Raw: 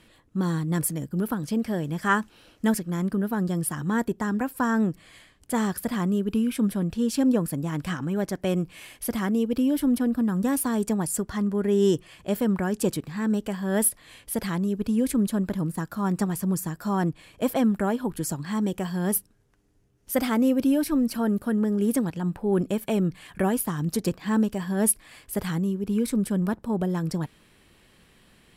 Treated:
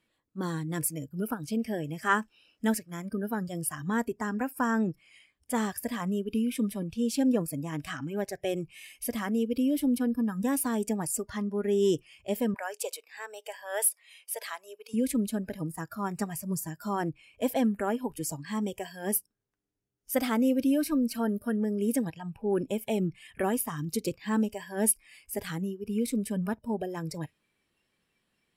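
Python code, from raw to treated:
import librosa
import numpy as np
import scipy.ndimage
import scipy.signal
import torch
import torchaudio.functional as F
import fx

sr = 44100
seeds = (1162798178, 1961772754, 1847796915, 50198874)

y = fx.highpass(x, sr, hz=510.0, slope=24, at=(12.54, 14.94))
y = fx.noise_reduce_blind(y, sr, reduce_db=16)
y = fx.low_shelf(y, sr, hz=96.0, db=-9.5)
y = y * librosa.db_to_amplitude(-2.5)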